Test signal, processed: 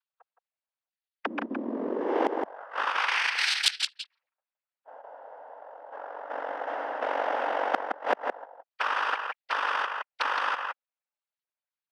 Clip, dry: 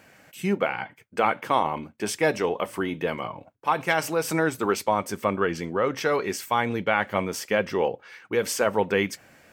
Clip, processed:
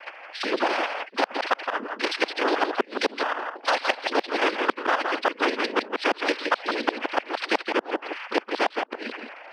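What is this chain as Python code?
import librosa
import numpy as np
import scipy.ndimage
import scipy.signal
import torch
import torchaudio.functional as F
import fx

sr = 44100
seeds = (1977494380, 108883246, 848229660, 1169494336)

p1 = fx.sine_speech(x, sr)
p2 = fx.low_shelf(p1, sr, hz=390.0, db=-6.5)
p3 = fx.notch(p2, sr, hz=2200.0, q=6.5)
p4 = fx.rider(p3, sr, range_db=5, speed_s=2.0)
p5 = p3 + F.gain(torch.from_numpy(p4), 0.5).numpy()
p6 = fx.dynamic_eq(p5, sr, hz=1300.0, q=3.4, threshold_db=-34.0, ratio=4.0, max_db=-7)
p7 = fx.level_steps(p6, sr, step_db=11)
p8 = fx.noise_vocoder(p7, sr, seeds[0], bands=8)
p9 = fx.gate_flip(p8, sr, shuts_db=-13.0, range_db=-39)
p10 = fx.brickwall_highpass(p9, sr, low_hz=220.0)
p11 = p10 + fx.echo_single(p10, sr, ms=167, db=-10.0, dry=0)
p12 = fx.spectral_comp(p11, sr, ratio=2.0)
y = F.gain(torch.from_numpy(p12), 5.5).numpy()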